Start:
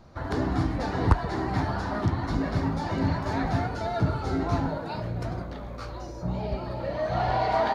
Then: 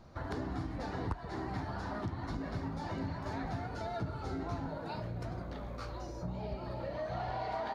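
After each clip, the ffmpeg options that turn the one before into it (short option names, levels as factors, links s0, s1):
-af "acompressor=threshold=0.0224:ratio=3,volume=0.631"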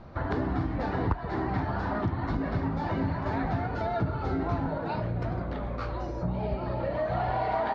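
-af "lowpass=2900,volume=2.82"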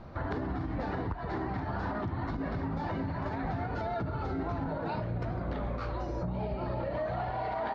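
-af "alimiter=level_in=1.19:limit=0.0631:level=0:latency=1:release=96,volume=0.841"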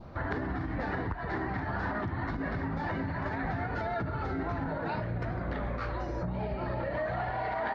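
-af "adynamicequalizer=threshold=0.00126:dfrequency=1800:dqfactor=2.1:tfrequency=1800:tqfactor=2.1:attack=5:release=100:ratio=0.375:range=4:mode=boostabove:tftype=bell"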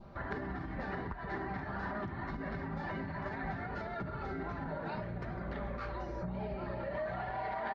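-af "aecho=1:1:5.1:0.41,volume=0.501"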